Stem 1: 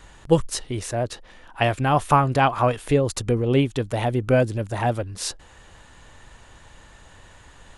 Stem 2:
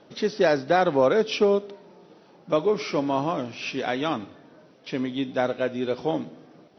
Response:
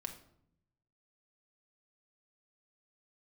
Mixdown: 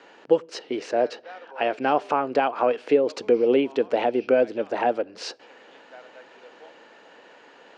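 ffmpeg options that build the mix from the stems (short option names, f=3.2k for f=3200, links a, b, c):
-filter_complex "[0:a]alimiter=limit=-13dB:level=0:latency=1:release=311,volume=2.5dB,asplit=2[a][b];[b]volume=-16.5dB[c];[1:a]highpass=860,adelay=550,volume=-16dB[d];[2:a]atrim=start_sample=2205[e];[c][e]afir=irnorm=-1:irlink=0[f];[a][d][f]amix=inputs=3:normalize=0,highpass=f=270:w=0.5412,highpass=f=270:w=1.3066,equalizer=f=470:t=q:w=4:g=5,equalizer=f=1.1k:t=q:w=4:g=-6,equalizer=f=1.9k:t=q:w=4:g=-4,equalizer=f=3.6k:t=q:w=4:g=-9,lowpass=f=4.5k:w=0.5412,lowpass=f=4.5k:w=1.3066"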